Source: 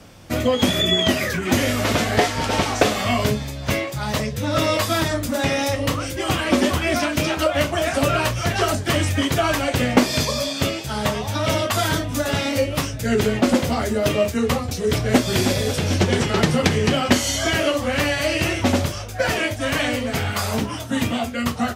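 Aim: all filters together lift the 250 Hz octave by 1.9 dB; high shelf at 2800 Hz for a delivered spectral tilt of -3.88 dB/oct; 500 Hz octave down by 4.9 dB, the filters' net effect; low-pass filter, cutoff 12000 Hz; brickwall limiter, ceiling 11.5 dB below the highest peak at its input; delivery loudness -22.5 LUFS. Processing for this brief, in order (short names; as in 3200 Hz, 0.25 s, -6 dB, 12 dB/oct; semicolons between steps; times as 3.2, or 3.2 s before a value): LPF 12000 Hz; bell 250 Hz +4 dB; bell 500 Hz -7.5 dB; high shelf 2800 Hz +3.5 dB; limiter -12.5 dBFS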